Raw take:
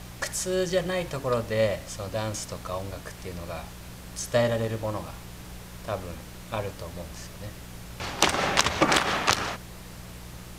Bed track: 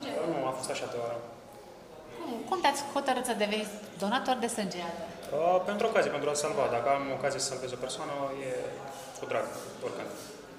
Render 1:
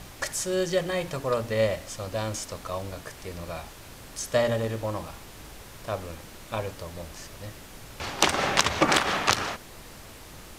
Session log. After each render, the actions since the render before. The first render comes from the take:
hum removal 60 Hz, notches 4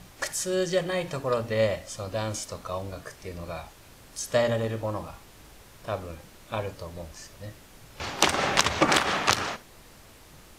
noise reduction from a noise print 6 dB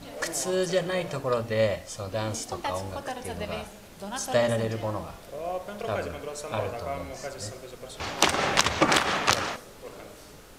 mix in bed track −6.5 dB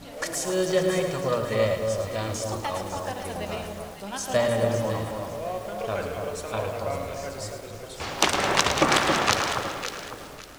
delay that swaps between a low-pass and a high-pass 277 ms, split 1,300 Hz, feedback 52%, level −4 dB
feedback echo at a low word length 108 ms, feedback 55%, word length 7 bits, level −8 dB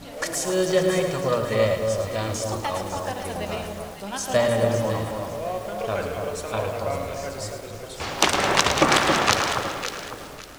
level +2.5 dB
brickwall limiter −2 dBFS, peak gain reduction 1 dB

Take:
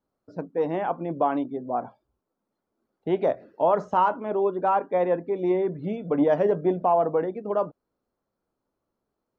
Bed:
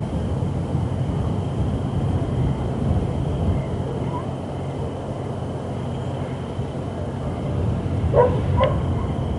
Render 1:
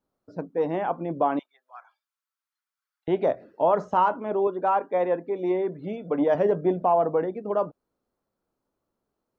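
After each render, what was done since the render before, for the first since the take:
0:01.39–0:03.08: high-pass filter 1,400 Hz 24 dB per octave
0:04.47–0:06.35: high-pass filter 250 Hz 6 dB per octave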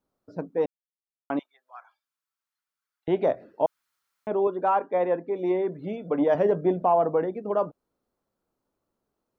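0:00.66–0:01.30: silence
0:03.66–0:04.27: fill with room tone
0:04.82–0:05.35: high-frequency loss of the air 85 metres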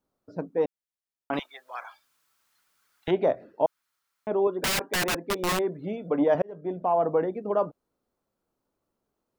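0:01.33–0:03.11: every bin compressed towards the loudest bin 2 to 1
0:04.52–0:05.59: wrap-around overflow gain 21.5 dB
0:06.42–0:07.13: fade in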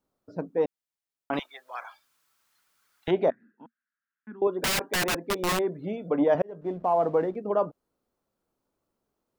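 0:03.30–0:04.42: pair of resonant band-passes 610 Hz, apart 2.8 octaves
0:06.61–0:07.36: slack as between gear wheels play −50.5 dBFS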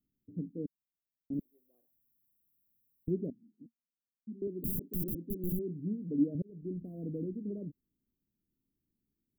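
inverse Chebyshev band-stop filter 840–4,800 Hz, stop band 60 dB
parametric band 10,000 Hz −5.5 dB 0.84 octaves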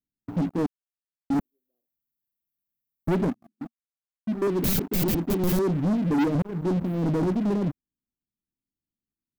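leveller curve on the samples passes 5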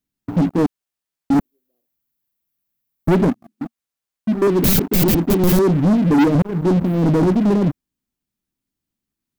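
level +9 dB

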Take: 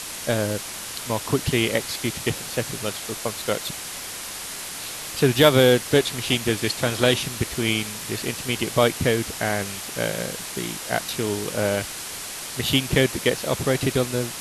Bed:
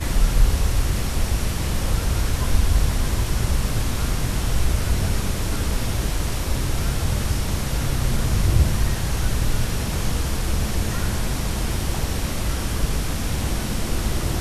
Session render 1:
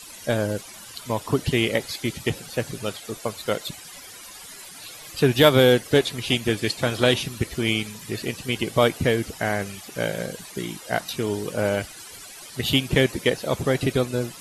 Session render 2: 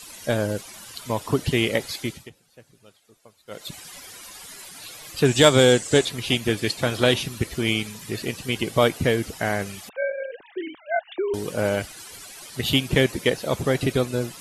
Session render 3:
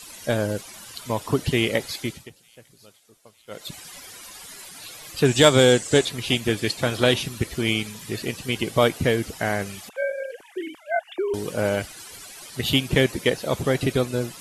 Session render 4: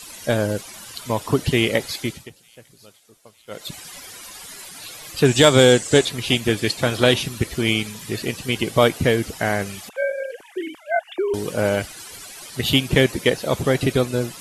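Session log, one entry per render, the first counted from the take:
broadband denoise 14 dB, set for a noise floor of −34 dBFS
0:01.99–0:03.78: duck −23.5 dB, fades 0.31 s; 0:05.25–0:06.05: low-pass with resonance 7,700 Hz, resonance Q 6.3; 0:09.89–0:11.34: three sine waves on the formant tracks
delay with a high-pass on its return 900 ms, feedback 58%, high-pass 5,500 Hz, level −19.5 dB
level +3 dB; brickwall limiter −1 dBFS, peak gain reduction 2.5 dB

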